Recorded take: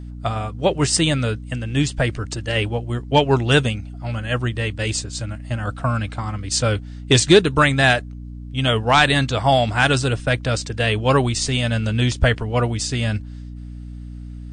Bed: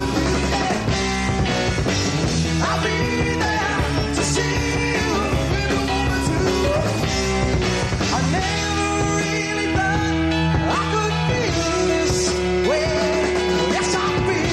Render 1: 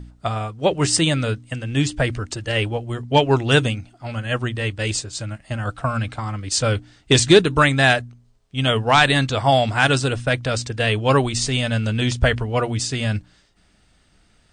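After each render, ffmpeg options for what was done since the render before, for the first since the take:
-af "bandreject=f=60:t=h:w=4,bandreject=f=120:t=h:w=4,bandreject=f=180:t=h:w=4,bandreject=f=240:t=h:w=4,bandreject=f=300:t=h:w=4"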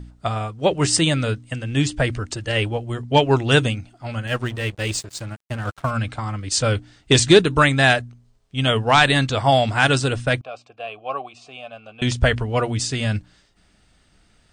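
-filter_complex "[0:a]asettb=1/sr,asplit=3[a][b][c];[a]atrim=end=4.274[d];[b]atrim=start=4.27:end=5.91,asetpts=PTS-STARTPTS,afade=t=in:d=0.004:c=qsin,afade=t=out:st=1.636:d=0.004:c=qsin,aeval=exprs='sgn(val(0))*max(abs(val(0))-0.0133,0)':c=same[e];[c]atrim=start=5.906[f];[d][e]acrossfade=d=0.004:c1=hsin:c2=qsin[g];[g][f]acrossfade=d=0.004:c1=qsin:c2=hsin,asettb=1/sr,asplit=3[h][i][j];[h]atrim=end=10.414[k];[i]atrim=start=10.41:end=12.02,asetpts=PTS-STARTPTS,afade=t=in:d=0.004:c=qsin,afade=t=out:st=1.606:d=0.004:c=qsin,asplit=3[l][m][n];[l]bandpass=f=730:t=q:w=8,volume=0dB[o];[m]bandpass=f=1.09k:t=q:w=8,volume=-6dB[p];[n]bandpass=f=2.44k:t=q:w=8,volume=-9dB[q];[o][p][q]amix=inputs=3:normalize=0[r];[j]atrim=start=12.016[s];[k][r]acrossfade=d=0.004:c1=hsin:c2=qsin[t];[t][s]acrossfade=d=0.004:c1=qsin:c2=hsin"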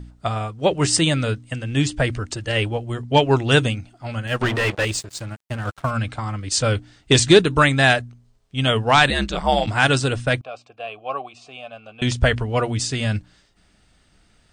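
-filter_complex "[0:a]asettb=1/sr,asplit=3[a][b][c];[a]atrim=end=4.414[d];[b]atrim=start=4.41:end=4.85,asetpts=PTS-STARTPTS,afade=t=in:d=0.004:c=qsin,afade=t=out:st=0.436:d=0.004:c=qsin,asplit=2[e][f];[f]highpass=f=720:p=1,volume=27dB,asoftclip=type=tanh:threshold=-10.5dB[g];[e][g]amix=inputs=2:normalize=0,lowpass=f=1.8k:p=1,volume=-6dB[h];[c]atrim=start=4.846[i];[d][h]acrossfade=d=0.004:c1=hsin:c2=qsin[j];[j][i]acrossfade=d=0.004:c1=qsin:c2=hsin,asplit=3[k][l][m];[k]afade=t=out:st=9.09:d=0.02[n];[l]aeval=exprs='val(0)*sin(2*PI*73*n/s)':c=same,afade=t=in:st=9.09:d=0.02,afade=t=out:st=9.66:d=0.02[o];[m]afade=t=in:st=9.66:d=0.02[p];[n][o][p]amix=inputs=3:normalize=0"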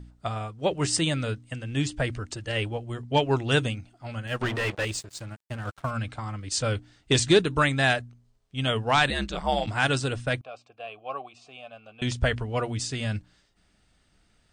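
-af "volume=-7dB"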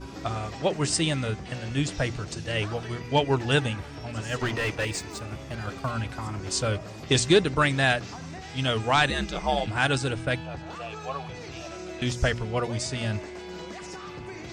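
-filter_complex "[1:a]volume=-19.5dB[a];[0:a][a]amix=inputs=2:normalize=0"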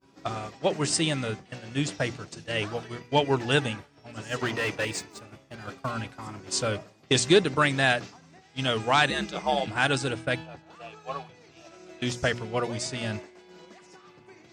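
-af "highpass=140,agate=range=-33dB:threshold=-30dB:ratio=3:detection=peak"

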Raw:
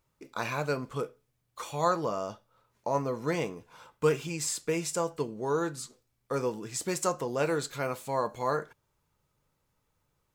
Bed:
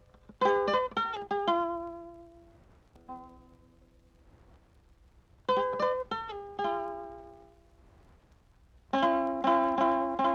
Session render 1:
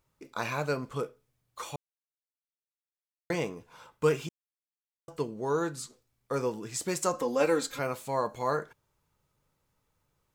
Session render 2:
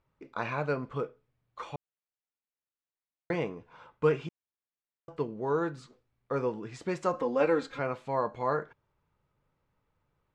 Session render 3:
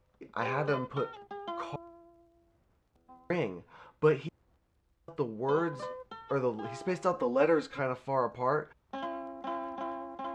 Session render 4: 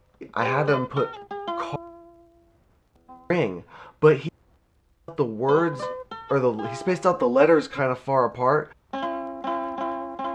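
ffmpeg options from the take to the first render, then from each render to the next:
-filter_complex "[0:a]asettb=1/sr,asplit=3[a][b][c];[a]atrim=end=7.134[d];[b]atrim=start=7.13:end=7.79,asetpts=PTS-STARTPTS,afade=t=in:d=0.004:c=qsin,afade=t=out:st=0.656:d=0.004:c=qsin,aecho=1:1:3.8:0.89,atrim=end_sample=29106[e];[c]atrim=start=7.786[f];[d][e]acrossfade=d=0.004:c1=hsin:c2=qsin[g];[g][f]acrossfade=d=0.004:c1=qsin:c2=hsin,asplit=5[h][i][j][k][l];[h]atrim=end=1.76,asetpts=PTS-STARTPTS,afade=t=out:st=1.756:d=0.004:c=hsin[m];[i]atrim=start=1.76:end=3.3,asetpts=PTS-STARTPTS,volume=0[n];[j]atrim=start=3.3:end=4.29,asetpts=PTS-STARTPTS,afade=t=in:d=0.004:c=hsin,afade=t=out:st=0.986:d=0.004:c=hsin[o];[k]atrim=start=4.29:end=5.08,asetpts=PTS-STARTPTS,volume=0[p];[l]atrim=start=5.08,asetpts=PTS-STARTPTS,afade=t=in:d=0.004:c=hsin[q];[m][n][o][p][q]concat=n=5:v=0:a=1"
-af "lowpass=2.6k"
-filter_complex "[1:a]volume=-11.5dB[a];[0:a][a]amix=inputs=2:normalize=0"
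-af "volume=9dB"

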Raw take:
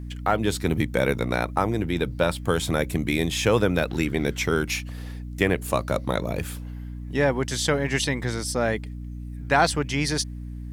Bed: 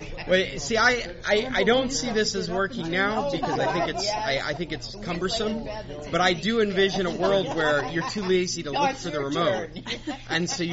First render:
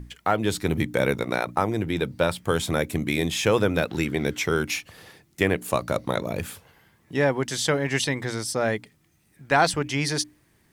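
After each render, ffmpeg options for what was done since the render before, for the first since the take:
-af "bandreject=f=60:t=h:w=6,bandreject=f=120:t=h:w=6,bandreject=f=180:t=h:w=6,bandreject=f=240:t=h:w=6,bandreject=f=300:t=h:w=6"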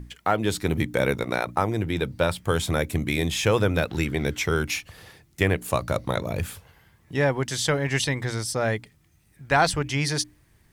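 -af "asubboost=boost=3:cutoff=120"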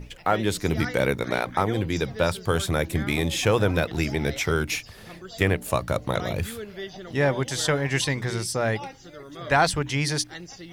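-filter_complex "[1:a]volume=-14.5dB[a];[0:a][a]amix=inputs=2:normalize=0"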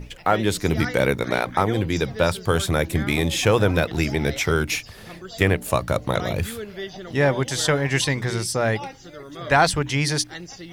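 -af "volume=3dB"

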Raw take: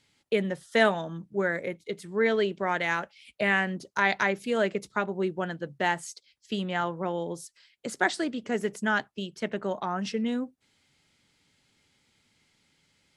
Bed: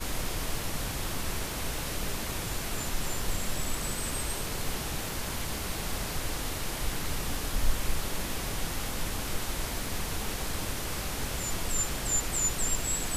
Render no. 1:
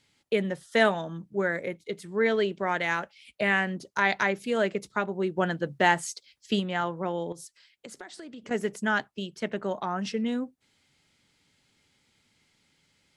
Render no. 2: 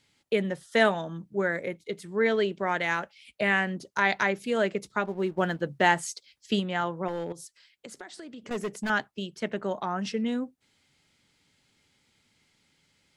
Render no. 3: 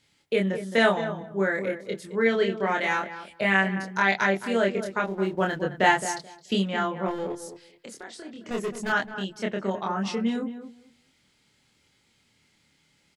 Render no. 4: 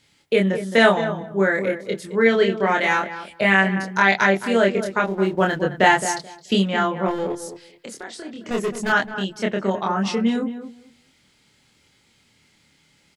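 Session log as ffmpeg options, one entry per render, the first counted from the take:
-filter_complex "[0:a]asplit=3[a][b][c];[a]afade=t=out:st=5.36:d=0.02[d];[b]acontrast=26,afade=t=in:st=5.36:d=0.02,afade=t=out:st=6.59:d=0.02[e];[c]afade=t=in:st=6.59:d=0.02[f];[d][e][f]amix=inputs=3:normalize=0,asettb=1/sr,asplit=3[g][h][i];[g]atrim=end=7.324[j];[h]atrim=start=7.32:end=8.51,asetpts=PTS-STARTPTS,afade=t=in:d=0.004:c=qsin,afade=t=out:st=1.186:d=0.004:c=qsin,acompressor=threshold=-39dB:ratio=12:attack=3.2:release=140:knee=1:detection=peak[k];[i]atrim=start=8.506[l];[j][k]acrossfade=d=0.004:c1=hsin:c2=qsin[m];[m][l]acrossfade=d=0.004:c1=qsin:c2=hsin"
-filter_complex "[0:a]asettb=1/sr,asplit=3[a][b][c];[a]atrim=end=5.054[d];[b]atrim=start=5.05:end=5.62,asetpts=PTS-STARTPTS,afade=t=in:d=0.004:c=qsin,afade=t=out:st=0.566:d=0.004:c=qsin,aeval=exprs='sgn(val(0))*max(abs(val(0))-0.00224,0)':c=same[e];[c]atrim=start=5.616[f];[d][e]acrossfade=d=0.004:c1=hsin:c2=qsin[g];[g][f]acrossfade=d=0.004:c1=qsin:c2=hsin,asettb=1/sr,asplit=3[h][i][j];[h]atrim=end=7.084[k];[i]atrim=start=7.08:end=8.9,asetpts=PTS-STARTPTS,afade=t=in:d=0.004:c=qsin,afade=t=out:st=1.816:d=0.004:c=qsin,asoftclip=type=hard:threshold=-27dB[l];[j]atrim=start=8.896[m];[k][l]acrossfade=d=0.004:c1=hsin:c2=qsin[n];[n][m]acrossfade=d=0.004:c1=qsin:c2=hsin"
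-filter_complex "[0:a]asplit=2[a][b];[b]adelay=26,volume=-2dB[c];[a][c]amix=inputs=2:normalize=0,asplit=2[d][e];[e]adelay=216,lowpass=f=1.3k:p=1,volume=-10dB,asplit=2[f][g];[g]adelay=216,lowpass=f=1.3k:p=1,volume=0.18,asplit=2[h][i];[i]adelay=216,lowpass=f=1.3k:p=1,volume=0.18[j];[d][f][h][j]amix=inputs=4:normalize=0"
-af "volume=6dB,alimiter=limit=-2dB:level=0:latency=1"

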